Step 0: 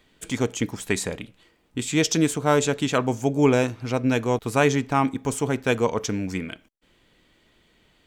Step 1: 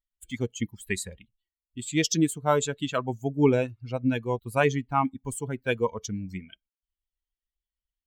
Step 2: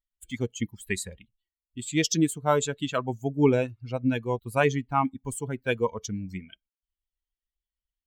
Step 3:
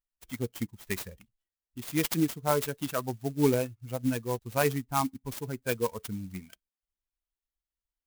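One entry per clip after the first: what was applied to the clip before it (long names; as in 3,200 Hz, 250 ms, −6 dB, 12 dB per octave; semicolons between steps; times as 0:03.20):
spectral dynamics exaggerated over time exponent 2
no processing that can be heard
converter with an unsteady clock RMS 0.059 ms; level −3.5 dB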